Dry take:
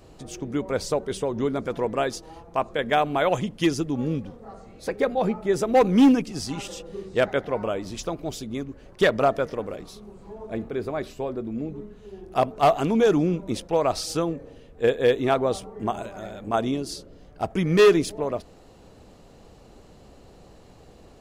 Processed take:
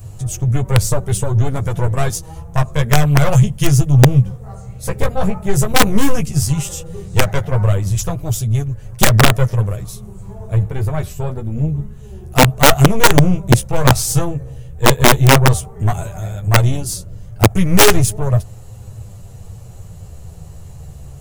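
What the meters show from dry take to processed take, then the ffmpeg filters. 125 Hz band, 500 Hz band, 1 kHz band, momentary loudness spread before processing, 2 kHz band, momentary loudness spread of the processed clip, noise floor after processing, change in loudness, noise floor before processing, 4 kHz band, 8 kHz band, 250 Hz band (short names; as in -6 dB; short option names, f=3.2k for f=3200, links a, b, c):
+20.5 dB, +2.5 dB, +7.5 dB, 16 LU, +11.5 dB, 16 LU, -35 dBFS, +9.0 dB, -50 dBFS, +13.5 dB, +18.5 dB, +5.5 dB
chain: -af "aeval=exprs='0.299*(cos(1*acos(clip(val(0)/0.299,-1,1)))-cos(1*PI/2))+0.00531*(cos(2*acos(clip(val(0)/0.299,-1,1)))-cos(2*PI/2))+0.015*(cos(3*acos(clip(val(0)/0.299,-1,1)))-cos(3*PI/2))+0.0596*(cos(4*acos(clip(val(0)/0.299,-1,1)))-cos(4*PI/2))+0.0188*(cos(5*acos(clip(val(0)/0.299,-1,1)))-cos(5*PI/2))':c=same,aexciter=amount=4.1:drive=6.6:freq=6.4k,lowshelf=f=180:t=q:w=3:g=12.5,flanger=delay=9.5:depth=5.8:regen=-3:speed=0.11:shape=sinusoidal,aeval=exprs='(mod(2.24*val(0)+1,2)-1)/2.24':c=same,volume=6dB"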